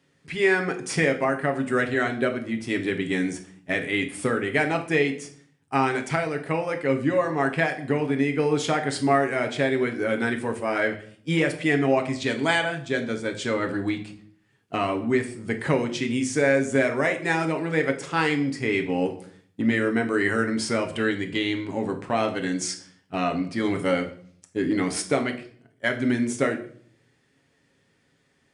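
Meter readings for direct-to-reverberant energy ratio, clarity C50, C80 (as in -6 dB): 4.0 dB, 12.0 dB, 15.5 dB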